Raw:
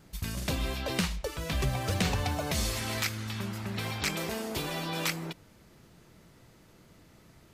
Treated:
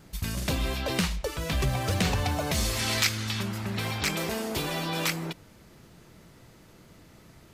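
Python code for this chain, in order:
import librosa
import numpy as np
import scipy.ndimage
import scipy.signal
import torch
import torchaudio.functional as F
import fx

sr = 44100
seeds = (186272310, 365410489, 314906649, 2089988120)

p1 = 10.0 ** (-28.0 / 20.0) * np.tanh(x / 10.0 ** (-28.0 / 20.0))
p2 = x + (p1 * librosa.db_to_amplitude(-4.5))
y = fx.peak_eq(p2, sr, hz=4600.0, db=6.0, octaves=2.2, at=(2.79, 3.43))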